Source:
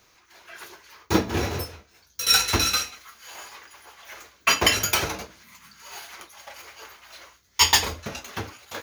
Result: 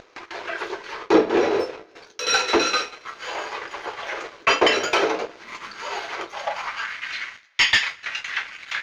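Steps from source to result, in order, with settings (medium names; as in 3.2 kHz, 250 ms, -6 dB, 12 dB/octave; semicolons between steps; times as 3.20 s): gate with hold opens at -47 dBFS; treble shelf 5.7 kHz -5.5 dB; upward compressor, threshold -31 dBFS; high-pass sweep 410 Hz -> 1.9 kHz, 6.31–6.93 s; in parallel at -2 dB: compression, threshold -31 dBFS, peak gain reduction 17.5 dB; on the sum: vibrato 3.1 Hz 22 cents; waveshaping leveller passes 2; distance through air 150 m; on a send at -13.5 dB: reverberation, pre-delay 3 ms; on the sum: trim -3.5 dB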